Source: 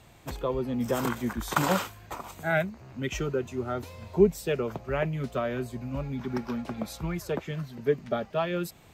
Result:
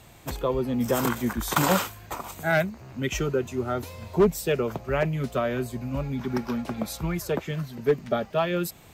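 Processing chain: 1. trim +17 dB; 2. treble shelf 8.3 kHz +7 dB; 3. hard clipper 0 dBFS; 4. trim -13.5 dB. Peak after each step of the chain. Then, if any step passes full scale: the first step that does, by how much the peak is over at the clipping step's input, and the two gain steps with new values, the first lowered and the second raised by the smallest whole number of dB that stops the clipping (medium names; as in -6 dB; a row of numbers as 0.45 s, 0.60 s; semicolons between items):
+9.0 dBFS, +9.0 dBFS, 0.0 dBFS, -13.5 dBFS; step 1, 9.0 dB; step 1 +8 dB, step 4 -4.5 dB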